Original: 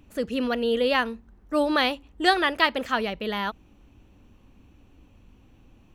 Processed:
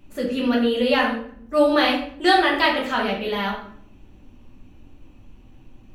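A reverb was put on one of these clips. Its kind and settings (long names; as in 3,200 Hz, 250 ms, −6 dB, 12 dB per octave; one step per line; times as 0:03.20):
rectangular room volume 95 cubic metres, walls mixed, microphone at 1.2 metres
level −1.5 dB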